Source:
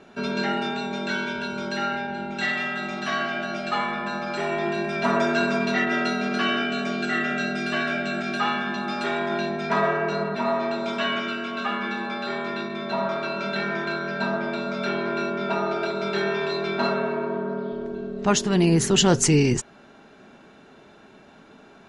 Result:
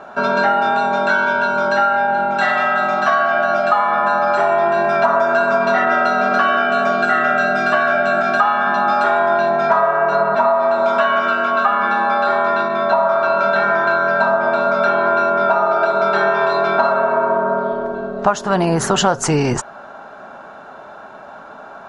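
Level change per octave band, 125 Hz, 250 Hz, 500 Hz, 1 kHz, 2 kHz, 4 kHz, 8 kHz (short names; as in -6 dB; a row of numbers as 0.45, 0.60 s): +0.5 dB, +0.5 dB, +10.5 dB, +14.0 dB, +9.5 dB, 0.0 dB, n/a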